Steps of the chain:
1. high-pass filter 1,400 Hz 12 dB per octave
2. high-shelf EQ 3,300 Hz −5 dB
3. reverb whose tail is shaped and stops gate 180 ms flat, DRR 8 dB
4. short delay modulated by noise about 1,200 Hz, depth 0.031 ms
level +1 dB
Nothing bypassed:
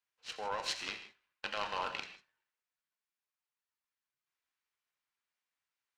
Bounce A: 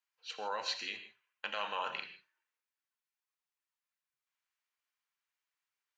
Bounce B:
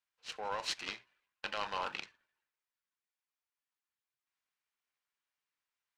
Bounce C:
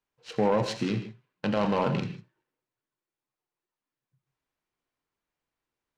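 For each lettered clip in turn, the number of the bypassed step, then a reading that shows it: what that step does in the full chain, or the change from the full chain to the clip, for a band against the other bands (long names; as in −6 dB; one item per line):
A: 4, 8 kHz band −4.0 dB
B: 3, change in momentary loudness spread −3 LU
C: 1, 125 Hz band +22.0 dB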